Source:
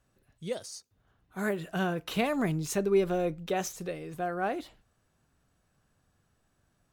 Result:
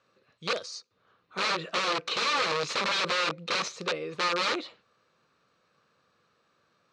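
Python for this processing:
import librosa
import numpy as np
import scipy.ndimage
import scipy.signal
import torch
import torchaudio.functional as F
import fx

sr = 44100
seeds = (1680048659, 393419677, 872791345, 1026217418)

y = (np.mod(10.0 ** (29.0 / 20.0) * x + 1.0, 2.0) - 1.0) / 10.0 ** (29.0 / 20.0)
y = fx.cabinet(y, sr, low_hz=220.0, low_slope=12, high_hz=6000.0, hz=(270.0, 500.0, 730.0, 1200.0, 2400.0, 4100.0), db=(-5, 8, -5, 10, 6, 8))
y = y * 10.0 ** (3.5 / 20.0)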